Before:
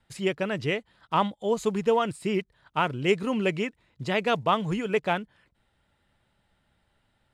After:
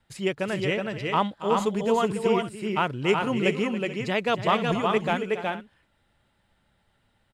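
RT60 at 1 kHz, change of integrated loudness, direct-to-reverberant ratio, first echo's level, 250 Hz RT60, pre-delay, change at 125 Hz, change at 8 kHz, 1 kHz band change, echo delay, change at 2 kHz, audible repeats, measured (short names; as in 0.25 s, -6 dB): none, +1.5 dB, none, -13.0 dB, none, none, +1.5 dB, +2.0 dB, +2.0 dB, 0.279 s, +2.0 dB, 3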